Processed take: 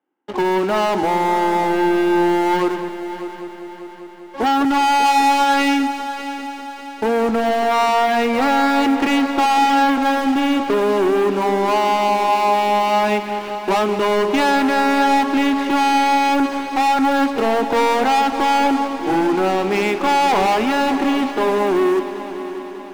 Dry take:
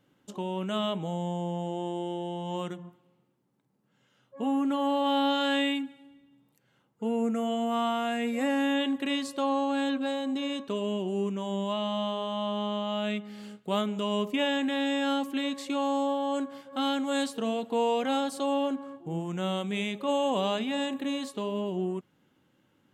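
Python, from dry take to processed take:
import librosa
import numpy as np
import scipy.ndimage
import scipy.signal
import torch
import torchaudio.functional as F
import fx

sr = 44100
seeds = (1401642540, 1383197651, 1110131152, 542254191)

y = fx.cabinet(x, sr, low_hz=270.0, low_slope=24, high_hz=2500.0, hz=(350.0, 560.0, 830.0), db=(7, -5, 10))
y = fx.leveller(y, sr, passes=5)
y = fx.echo_heads(y, sr, ms=198, heads='first and third', feedback_pct=65, wet_db=-14)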